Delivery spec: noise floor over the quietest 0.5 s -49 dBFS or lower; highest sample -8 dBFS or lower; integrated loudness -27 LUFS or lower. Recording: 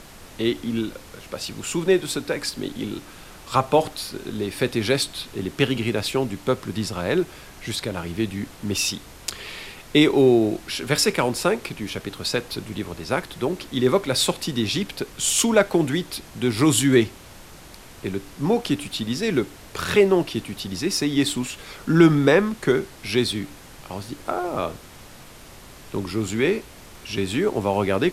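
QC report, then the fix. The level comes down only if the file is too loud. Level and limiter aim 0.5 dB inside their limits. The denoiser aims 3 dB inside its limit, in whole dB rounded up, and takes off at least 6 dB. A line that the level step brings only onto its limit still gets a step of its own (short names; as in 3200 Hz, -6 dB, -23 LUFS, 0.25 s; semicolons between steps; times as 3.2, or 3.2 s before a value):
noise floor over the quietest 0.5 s -44 dBFS: fail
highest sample -3.5 dBFS: fail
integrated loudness -23.0 LUFS: fail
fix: denoiser 6 dB, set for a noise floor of -44 dBFS; gain -4.5 dB; limiter -8.5 dBFS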